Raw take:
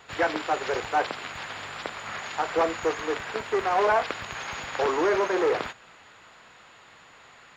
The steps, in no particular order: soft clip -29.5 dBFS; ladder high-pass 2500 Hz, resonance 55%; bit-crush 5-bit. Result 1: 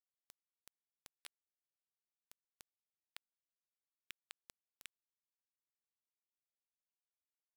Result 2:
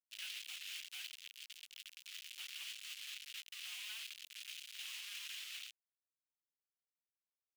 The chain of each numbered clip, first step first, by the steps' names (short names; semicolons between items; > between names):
ladder high-pass > bit-crush > soft clip; bit-crush > soft clip > ladder high-pass